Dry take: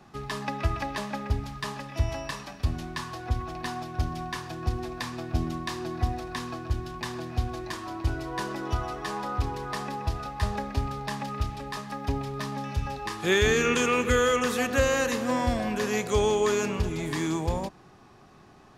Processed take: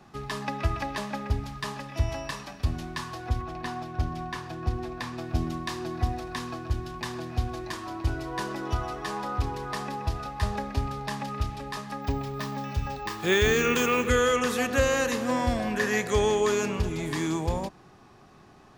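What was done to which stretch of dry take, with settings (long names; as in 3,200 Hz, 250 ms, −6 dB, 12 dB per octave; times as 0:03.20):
0:03.41–0:05.18: high-shelf EQ 4,200 Hz −7 dB
0:12.02–0:14.08: bad sample-rate conversion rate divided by 2×, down filtered, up hold
0:15.75–0:16.41: parametric band 1,800 Hz +11.5 dB 0.26 octaves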